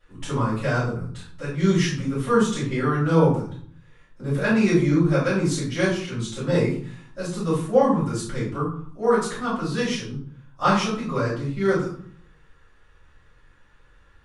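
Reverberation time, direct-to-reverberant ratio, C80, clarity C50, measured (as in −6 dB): 0.55 s, −12.5 dB, 8.5 dB, 3.5 dB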